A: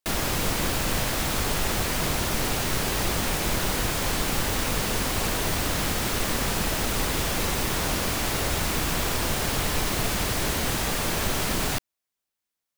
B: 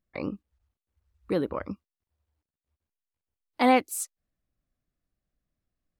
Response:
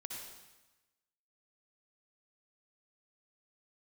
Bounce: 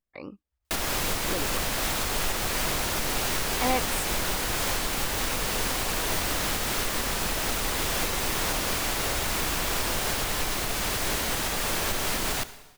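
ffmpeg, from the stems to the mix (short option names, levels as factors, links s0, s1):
-filter_complex "[0:a]alimiter=limit=0.119:level=0:latency=1:release=453,adelay=650,volume=1.19,asplit=2[s0][s1];[s1]volume=0.376[s2];[1:a]volume=0.596[s3];[2:a]atrim=start_sample=2205[s4];[s2][s4]afir=irnorm=-1:irlink=0[s5];[s0][s3][s5]amix=inputs=3:normalize=0,equalizer=f=120:w=0.39:g=-6.5"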